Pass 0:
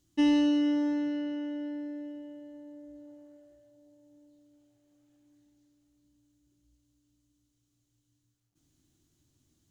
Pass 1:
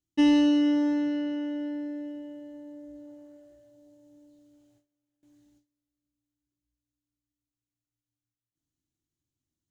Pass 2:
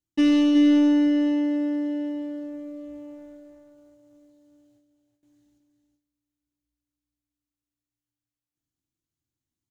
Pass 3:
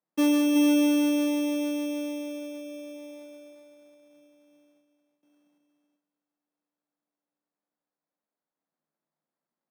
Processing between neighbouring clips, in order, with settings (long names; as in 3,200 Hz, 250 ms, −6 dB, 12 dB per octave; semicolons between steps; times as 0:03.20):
noise gate with hold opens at −59 dBFS; level +3.5 dB
leveller curve on the samples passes 1; single-tap delay 372 ms −7 dB
decimation without filtering 15×; Chebyshev high-pass with heavy ripple 150 Hz, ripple 6 dB; level +2 dB